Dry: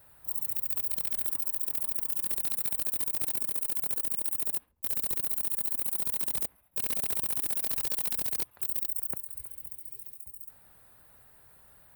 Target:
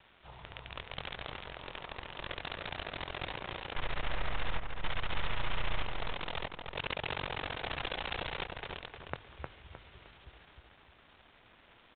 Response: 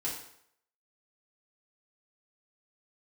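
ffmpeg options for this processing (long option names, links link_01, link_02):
-filter_complex "[0:a]asettb=1/sr,asplit=3[link_01][link_02][link_03];[link_01]atrim=end=3.764[link_04];[link_02]atrim=start=3.76:end=5.82,asetpts=PTS-STARTPTS,afade=type=in:duration=0.004:curve=qsin,afade=type=out:start_time=2.056:duration=0.004:curve=qsin,aeval=exprs='if(lt(val(0),0),0.251*val(0),val(0))':channel_layout=same[link_05];[link_03]atrim=start=5.816[link_06];[link_04][link_05]acrossfade=duration=0.004:curve1=hsin:curve2=qsin[link_07];[link_07][link_06]acrossfade=duration=0.004:curve1=qsin:curve2=hsin,equalizer=frequency=240:width_type=o:width=1.3:gain=-12,bandreject=frequency=50:width_type=h:width=6,bandreject=frequency=100:width_type=h:width=6,aeval=exprs='val(0)*gte(abs(val(0)),0.00282)':channel_layout=same,asplit=2[link_08][link_09];[link_09]adelay=308,lowpass=frequency=2500:poles=1,volume=-3.5dB,asplit=2[link_10][link_11];[link_11]adelay=308,lowpass=frequency=2500:poles=1,volume=0.35,asplit=2[link_12][link_13];[link_13]adelay=308,lowpass=frequency=2500:poles=1,volume=0.35,asplit=2[link_14][link_15];[link_15]adelay=308,lowpass=frequency=2500:poles=1,volume=0.35,asplit=2[link_16][link_17];[link_17]adelay=308,lowpass=frequency=2500:poles=1,volume=0.35[link_18];[link_08][link_10][link_12][link_14][link_16][link_18]amix=inputs=6:normalize=0,volume=8.5dB" -ar 8000 -c:a pcm_mulaw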